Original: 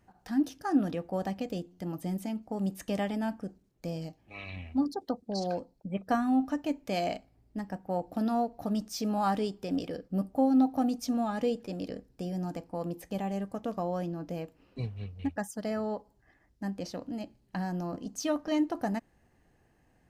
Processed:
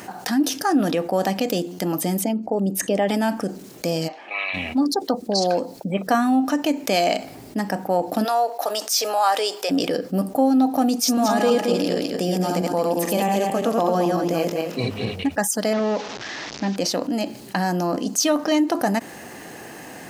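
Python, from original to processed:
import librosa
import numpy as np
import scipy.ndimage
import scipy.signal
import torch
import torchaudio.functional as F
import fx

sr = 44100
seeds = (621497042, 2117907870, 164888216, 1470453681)

y = fx.envelope_sharpen(x, sr, power=1.5, at=(2.21, 3.08), fade=0.02)
y = fx.bandpass_edges(y, sr, low_hz=770.0, high_hz=2400.0, at=(4.07, 4.53), fade=0.02)
y = fx.highpass(y, sr, hz=490.0, slope=24, at=(8.23, 9.69), fade=0.02)
y = fx.reverse_delay_fb(y, sr, ms=111, feedback_pct=46, wet_db=-1.5, at=(10.95, 15.16))
y = fx.delta_mod(y, sr, bps=32000, step_db=-52.0, at=(15.73, 16.76))
y = scipy.signal.sosfilt(scipy.signal.butter(2, 240.0, 'highpass', fs=sr, output='sos'), y)
y = fx.high_shelf(y, sr, hz=3500.0, db=7.0)
y = fx.env_flatten(y, sr, amount_pct=50)
y = y * 10.0 ** (7.5 / 20.0)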